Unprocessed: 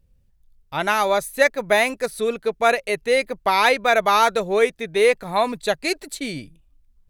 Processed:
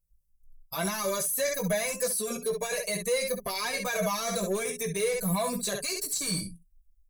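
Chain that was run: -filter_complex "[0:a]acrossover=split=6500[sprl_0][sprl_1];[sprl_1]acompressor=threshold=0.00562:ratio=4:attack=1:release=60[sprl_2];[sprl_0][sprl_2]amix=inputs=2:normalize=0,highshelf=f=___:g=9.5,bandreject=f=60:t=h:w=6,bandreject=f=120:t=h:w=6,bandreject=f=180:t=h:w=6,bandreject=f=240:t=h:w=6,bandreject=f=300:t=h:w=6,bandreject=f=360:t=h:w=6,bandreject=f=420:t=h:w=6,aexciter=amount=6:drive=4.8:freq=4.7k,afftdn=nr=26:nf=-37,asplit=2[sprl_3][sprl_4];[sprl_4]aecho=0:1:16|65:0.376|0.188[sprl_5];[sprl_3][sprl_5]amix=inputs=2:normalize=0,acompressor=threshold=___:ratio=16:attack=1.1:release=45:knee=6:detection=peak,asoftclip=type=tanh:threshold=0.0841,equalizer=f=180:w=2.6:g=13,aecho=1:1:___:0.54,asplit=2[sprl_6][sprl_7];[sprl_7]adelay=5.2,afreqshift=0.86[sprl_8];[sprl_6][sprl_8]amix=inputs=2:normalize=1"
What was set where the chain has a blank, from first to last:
5k, 0.0891, 1.8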